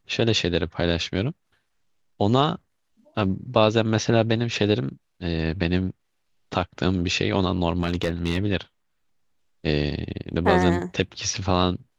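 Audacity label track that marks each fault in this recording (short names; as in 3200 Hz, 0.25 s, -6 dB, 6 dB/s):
7.800000	8.390000	clipped -16.5 dBFS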